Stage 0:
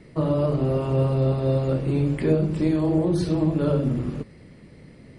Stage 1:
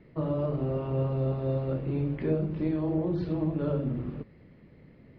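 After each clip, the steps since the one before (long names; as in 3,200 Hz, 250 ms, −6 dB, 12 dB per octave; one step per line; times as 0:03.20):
Bessel low-pass filter 2,600 Hz, order 8
level −7 dB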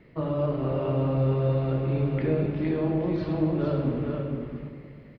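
drawn EQ curve 220 Hz 0 dB, 2,800 Hz +6 dB, 4,300 Hz +4 dB
single-tap delay 462 ms −5 dB
on a send at −6 dB: convolution reverb RT60 2.0 s, pre-delay 66 ms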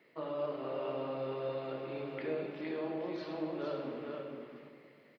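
high-pass filter 400 Hz 12 dB per octave
high-shelf EQ 3,500 Hz +8 dB
level −7 dB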